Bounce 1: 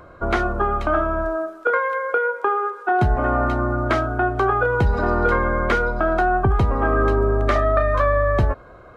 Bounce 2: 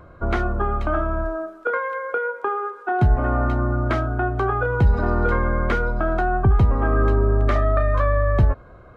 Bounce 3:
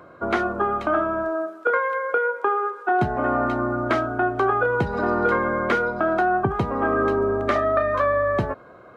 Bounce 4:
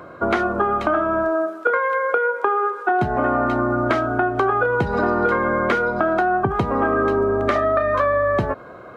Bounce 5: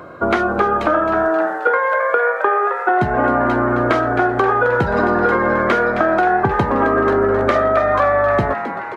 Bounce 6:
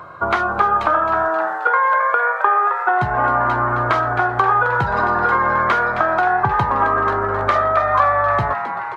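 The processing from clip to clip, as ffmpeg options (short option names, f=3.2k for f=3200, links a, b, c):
-af "bass=f=250:g=7,treble=f=4k:g=-3,volume=-4dB"
-af "highpass=220,volume=2.5dB"
-af "acompressor=threshold=-24dB:ratio=3,volume=7dB"
-filter_complex "[0:a]asplit=8[a][b][c][d][e][f][g][h];[b]adelay=265,afreqshift=120,volume=-10dB[i];[c]adelay=530,afreqshift=240,volume=-14.4dB[j];[d]adelay=795,afreqshift=360,volume=-18.9dB[k];[e]adelay=1060,afreqshift=480,volume=-23.3dB[l];[f]adelay=1325,afreqshift=600,volume=-27.7dB[m];[g]adelay=1590,afreqshift=720,volume=-32.2dB[n];[h]adelay=1855,afreqshift=840,volume=-36.6dB[o];[a][i][j][k][l][m][n][o]amix=inputs=8:normalize=0,volume=3dB"
-af "equalizer=f=125:t=o:w=1:g=5,equalizer=f=250:t=o:w=1:g=-9,equalizer=f=500:t=o:w=1:g=-5,equalizer=f=1k:t=o:w=1:g=9,equalizer=f=4k:t=o:w=1:g=3,volume=-3.5dB"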